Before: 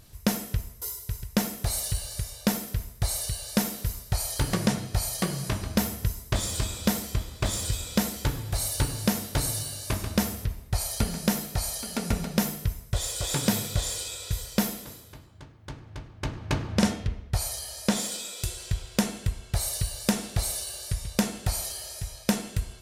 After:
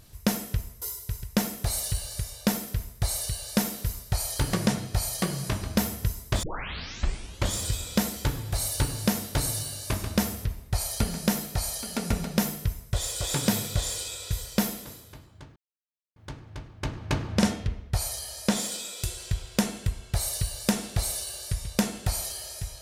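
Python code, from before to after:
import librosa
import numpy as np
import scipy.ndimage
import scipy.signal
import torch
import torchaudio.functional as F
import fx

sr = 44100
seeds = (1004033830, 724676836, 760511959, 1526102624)

y = fx.edit(x, sr, fx.tape_start(start_s=6.43, length_s=1.11),
    fx.insert_silence(at_s=15.56, length_s=0.6), tone=tone)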